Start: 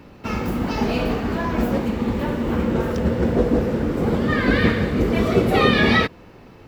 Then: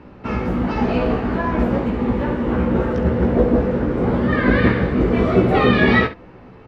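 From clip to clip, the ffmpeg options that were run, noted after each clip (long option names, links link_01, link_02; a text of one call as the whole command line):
ffmpeg -i in.wav -af "lowpass=1700,aemphasis=mode=production:type=75fm,aecho=1:1:16|68:0.562|0.237,volume=2dB" out.wav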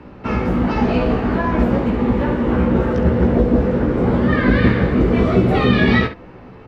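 ffmpeg -i in.wav -filter_complex "[0:a]acrossover=split=270|3000[link_01][link_02][link_03];[link_02]acompressor=threshold=-20dB:ratio=6[link_04];[link_01][link_04][link_03]amix=inputs=3:normalize=0,volume=3dB" out.wav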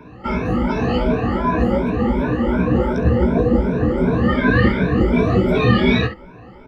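ffmpeg -i in.wav -af "afftfilt=real='re*pow(10,20/40*sin(2*PI*(1.6*log(max(b,1)*sr/1024/100)/log(2)-(2.7)*(pts-256)/sr)))':imag='im*pow(10,20/40*sin(2*PI*(1.6*log(max(b,1)*sr/1024/100)/log(2)-(2.7)*(pts-256)/sr)))':win_size=1024:overlap=0.75,volume=-4.5dB" out.wav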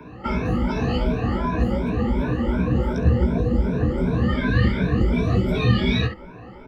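ffmpeg -i in.wav -filter_complex "[0:a]acrossover=split=170|3000[link_01][link_02][link_03];[link_02]acompressor=threshold=-24dB:ratio=6[link_04];[link_01][link_04][link_03]amix=inputs=3:normalize=0" out.wav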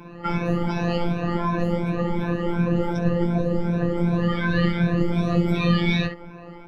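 ffmpeg -i in.wav -af "afftfilt=real='hypot(re,im)*cos(PI*b)':imag='0':win_size=1024:overlap=0.75,volume=3.5dB" out.wav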